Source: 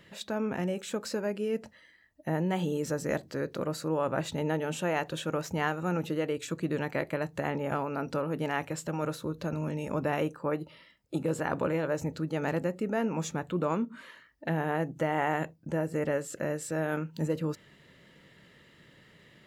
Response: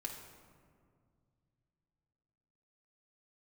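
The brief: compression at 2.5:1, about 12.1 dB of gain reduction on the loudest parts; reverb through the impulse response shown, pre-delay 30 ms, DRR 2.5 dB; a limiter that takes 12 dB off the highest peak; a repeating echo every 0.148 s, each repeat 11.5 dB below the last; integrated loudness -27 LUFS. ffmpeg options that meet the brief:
-filter_complex "[0:a]acompressor=threshold=-44dB:ratio=2.5,alimiter=level_in=15dB:limit=-24dB:level=0:latency=1,volume=-15dB,aecho=1:1:148|296|444:0.266|0.0718|0.0194,asplit=2[a][b];[1:a]atrim=start_sample=2205,adelay=30[c];[b][c]afir=irnorm=-1:irlink=0,volume=-1dB[d];[a][d]amix=inputs=2:normalize=0,volume=19.5dB"

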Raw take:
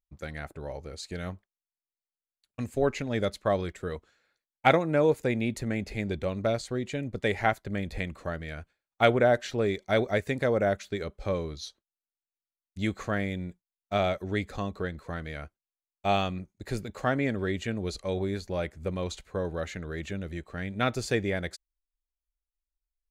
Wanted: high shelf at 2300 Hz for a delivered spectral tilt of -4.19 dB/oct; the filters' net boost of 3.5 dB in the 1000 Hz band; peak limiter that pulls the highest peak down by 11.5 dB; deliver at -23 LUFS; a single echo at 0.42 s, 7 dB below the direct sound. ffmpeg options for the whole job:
-af "equalizer=f=1k:t=o:g=7,highshelf=f=2.3k:g=-8,alimiter=limit=-16.5dB:level=0:latency=1,aecho=1:1:420:0.447,volume=7.5dB"

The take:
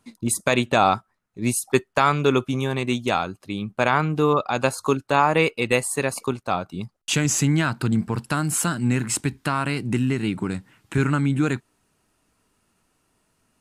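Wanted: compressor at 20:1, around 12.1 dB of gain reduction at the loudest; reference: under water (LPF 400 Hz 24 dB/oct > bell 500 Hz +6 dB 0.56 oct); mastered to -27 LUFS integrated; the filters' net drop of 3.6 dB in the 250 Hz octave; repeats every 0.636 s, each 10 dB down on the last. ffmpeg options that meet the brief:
-af "equalizer=f=250:t=o:g=-5,acompressor=threshold=-25dB:ratio=20,lowpass=f=400:w=0.5412,lowpass=f=400:w=1.3066,equalizer=f=500:t=o:w=0.56:g=6,aecho=1:1:636|1272|1908|2544:0.316|0.101|0.0324|0.0104,volume=7dB"

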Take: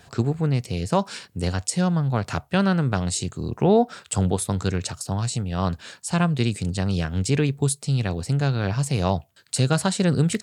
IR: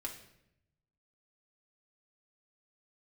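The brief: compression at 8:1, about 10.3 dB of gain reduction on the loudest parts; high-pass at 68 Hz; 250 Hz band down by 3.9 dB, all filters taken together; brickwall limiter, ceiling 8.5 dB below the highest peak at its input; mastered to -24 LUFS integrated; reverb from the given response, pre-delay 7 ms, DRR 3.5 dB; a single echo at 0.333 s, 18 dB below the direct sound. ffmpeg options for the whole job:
-filter_complex "[0:a]highpass=68,equalizer=f=250:t=o:g=-6.5,acompressor=threshold=-27dB:ratio=8,alimiter=limit=-21.5dB:level=0:latency=1,aecho=1:1:333:0.126,asplit=2[a][b];[1:a]atrim=start_sample=2205,adelay=7[c];[b][c]afir=irnorm=-1:irlink=0,volume=-2.5dB[d];[a][d]amix=inputs=2:normalize=0,volume=7.5dB"

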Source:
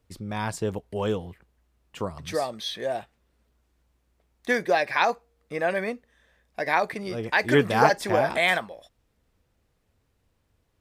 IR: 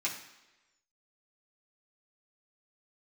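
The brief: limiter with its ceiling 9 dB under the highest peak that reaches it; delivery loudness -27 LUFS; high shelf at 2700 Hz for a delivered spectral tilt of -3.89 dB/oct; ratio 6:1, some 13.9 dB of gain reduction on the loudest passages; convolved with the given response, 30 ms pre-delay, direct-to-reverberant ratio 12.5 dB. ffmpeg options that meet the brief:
-filter_complex "[0:a]highshelf=f=2.7k:g=-6,acompressor=threshold=-29dB:ratio=6,alimiter=limit=-24dB:level=0:latency=1,asplit=2[a][b];[1:a]atrim=start_sample=2205,adelay=30[c];[b][c]afir=irnorm=-1:irlink=0,volume=-17.5dB[d];[a][d]amix=inputs=2:normalize=0,volume=9dB"

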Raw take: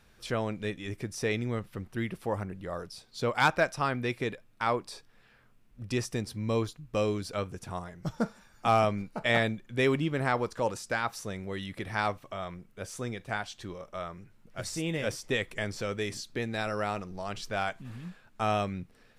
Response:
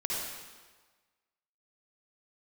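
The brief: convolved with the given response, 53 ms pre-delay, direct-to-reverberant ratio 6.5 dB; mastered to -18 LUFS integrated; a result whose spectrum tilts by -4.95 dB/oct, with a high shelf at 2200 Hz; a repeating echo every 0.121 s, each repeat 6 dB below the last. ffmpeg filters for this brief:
-filter_complex "[0:a]highshelf=f=2.2k:g=-6.5,aecho=1:1:121|242|363|484|605|726:0.501|0.251|0.125|0.0626|0.0313|0.0157,asplit=2[a][b];[1:a]atrim=start_sample=2205,adelay=53[c];[b][c]afir=irnorm=-1:irlink=0,volume=-12dB[d];[a][d]amix=inputs=2:normalize=0,volume=13.5dB"

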